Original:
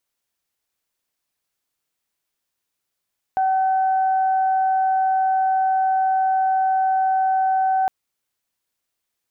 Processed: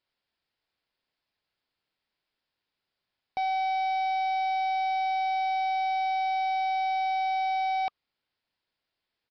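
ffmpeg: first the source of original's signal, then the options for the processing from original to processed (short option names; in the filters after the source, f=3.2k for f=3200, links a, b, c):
-f lavfi -i "aevalsrc='0.158*sin(2*PI*761*t)+0.0188*sin(2*PI*1522*t)':d=4.51:s=44100"
-af "bandreject=f=1.2k:w=16,aresample=11025,asoftclip=type=tanh:threshold=-26.5dB,aresample=44100"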